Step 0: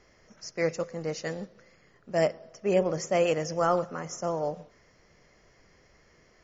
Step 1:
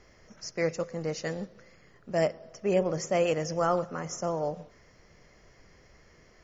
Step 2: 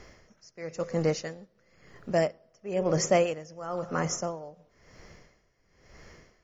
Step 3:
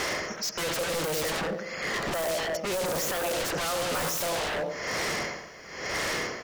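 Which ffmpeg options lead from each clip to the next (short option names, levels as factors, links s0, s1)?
-filter_complex "[0:a]lowshelf=f=130:g=4.5,asplit=2[s0][s1];[s1]acompressor=threshold=0.02:ratio=6,volume=0.708[s2];[s0][s2]amix=inputs=2:normalize=0,volume=0.708"
-af "aeval=exprs='val(0)*pow(10,-22*(0.5-0.5*cos(2*PI*0.99*n/s))/20)':c=same,volume=2.37"
-filter_complex "[0:a]asplit=2[s0][s1];[s1]adelay=96,lowpass=f=1300:p=1,volume=0.531,asplit=2[s2][s3];[s3]adelay=96,lowpass=f=1300:p=1,volume=0.34,asplit=2[s4][s5];[s5]adelay=96,lowpass=f=1300:p=1,volume=0.34,asplit=2[s6][s7];[s7]adelay=96,lowpass=f=1300:p=1,volume=0.34[s8];[s0][s2][s4][s6][s8]amix=inputs=5:normalize=0,asplit=2[s9][s10];[s10]highpass=f=720:p=1,volume=63.1,asoftclip=type=tanh:threshold=0.299[s11];[s9][s11]amix=inputs=2:normalize=0,lowpass=f=6400:p=1,volume=0.501,aeval=exprs='0.0562*(abs(mod(val(0)/0.0562+3,4)-2)-1)':c=same"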